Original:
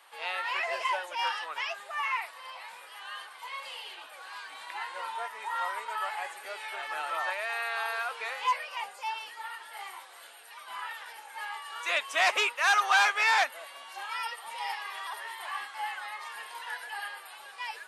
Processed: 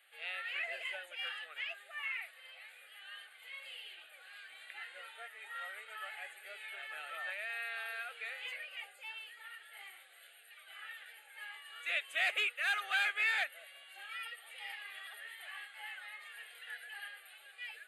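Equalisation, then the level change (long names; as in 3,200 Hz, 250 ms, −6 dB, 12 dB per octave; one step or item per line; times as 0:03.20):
high-pass filter 570 Hz 12 dB per octave
notch filter 940 Hz, Q 10
phaser with its sweep stopped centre 2,400 Hz, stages 4
−5.0 dB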